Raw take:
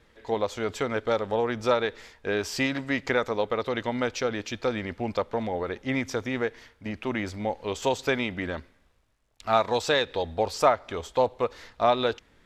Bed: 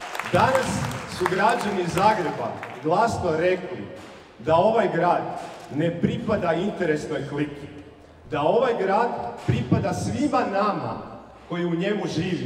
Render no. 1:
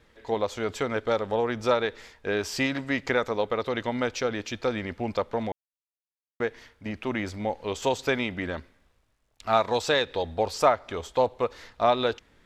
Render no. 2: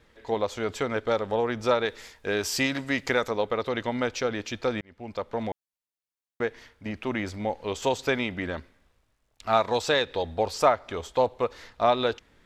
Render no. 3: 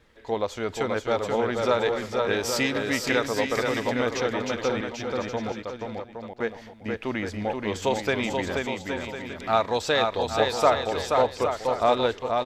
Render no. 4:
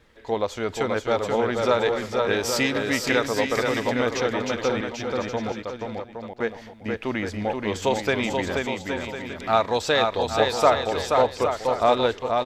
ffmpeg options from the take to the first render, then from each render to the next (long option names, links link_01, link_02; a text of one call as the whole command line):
ffmpeg -i in.wav -filter_complex "[0:a]asplit=3[link_01][link_02][link_03];[link_01]atrim=end=5.52,asetpts=PTS-STARTPTS,afade=type=out:start_time=5.516:duration=0.004:curve=hsin[link_04];[link_02]atrim=start=5.52:end=6.4,asetpts=PTS-STARTPTS,volume=0[link_05];[link_03]atrim=start=6.4,asetpts=PTS-STARTPTS,afade=type=in:duration=0.004:curve=hsin[link_06];[link_04][link_05][link_06]concat=n=3:v=0:a=1" out.wav
ffmpeg -i in.wav -filter_complex "[0:a]asettb=1/sr,asplit=3[link_01][link_02][link_03];[link_01]atrim=end=1.854[link_04];[link_02]atrim=start=1.85:end=3.31,asetpts=PTS-STARTPTS,afade=type=in:duration=0.004:curve=qsin,afade=type=out:start_time=1.456:duration=0.004:curve=qsin,aemphasis=mode=production:type=cd[link_05];[link_03]atrim=start=3.306[link_06];[link_04][link_05]acrossfade=duration=0.004:curve1=hsin:curve2=qsin[link_07];[link_07][link_06]acrossfade=duration=0.004:curve1=qsin:curve2=hsin,asplit=2[link_08][link_09];[link_08]atrim=end=4.81,asetpts=PTS-STARTPTS,afade=type=out:start_time=4.806:duration=0.004:curve=hsin[link_10];[link_09]atrim=start=4.81,asetpts=PTS-STARTPTS,afade=type=in:duration=0.67[link_11];[link_10][link_11]concat=n=2:v=0:a=1" out.wav
ffmpeg -i in.wav -af "aecho=1:1:480|816|1051|1216|1331:0.631|0.398|0.251|0.158|0.1" out.wav
ffmpeg -i in.wav -af "volume=2dB" out.wav